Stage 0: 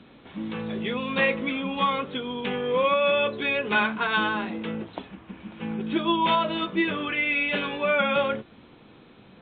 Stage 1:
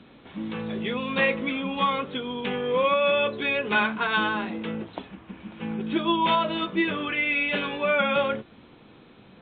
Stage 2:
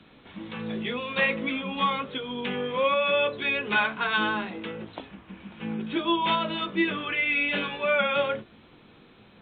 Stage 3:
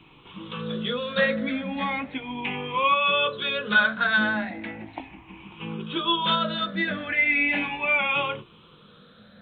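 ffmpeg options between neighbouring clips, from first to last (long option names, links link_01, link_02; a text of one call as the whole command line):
ffmpeg -i in.wav -af anull out.wav
ffmpeg -i in.wav -filter_complex "[0:a]acrossover=split=100|1100[link_01][link_02][link_03];[link_01]alimiter=level_in=28.5dB:limit=-24dB:level=0:latency=1,volume=-28.5dB[link_04];[link_02]flanger=delay=18.5:depth=2.5:speed=1.4[link_05];[link_04][link_05][link_03]amix=inputs=3:normalize=0" out.wav
ffmpeg -i in.wav -af "afftfilt=real='re*pow(10,14/40*sin(2*PI*(0.69*log(max(b,1)*sr/1024/100)/log(2)-(0.37)*(pts-256)/sr)))':imag='im*pow(10,14/40*sin(2*PI*(0.69*log(max(b,1)*sr/1024/100)/log(2)-(0.37)*(pts-256)/sr)))':win_size=1024:overlap=0.75,equalizer=frequency=400:width_type=o:width=0.38:gain=-6" out.wav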